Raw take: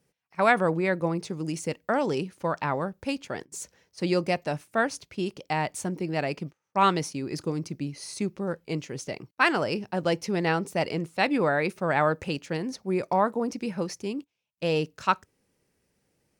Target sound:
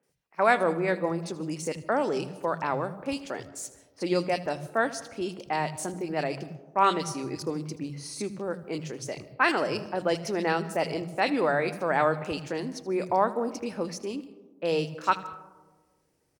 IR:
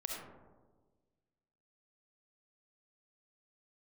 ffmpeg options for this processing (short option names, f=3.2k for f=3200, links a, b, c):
-filter_complex "[0:a]equalizer=f=190:w=3.2:g=-4,acrossover=split=180|2500[a][b][c];[c]adelay=30[d];[a]adelay=90[e];[e][b][d]amix=inputs=3:normalize=0,asplit=2[f][g];[1:a]atrim=start_sample=2205,adelay=79[h];[g][h]afir=irnorm=-1:irlink=0,volume=-15.5dB[i];[f][i]amix=inputs=2:normalize=0"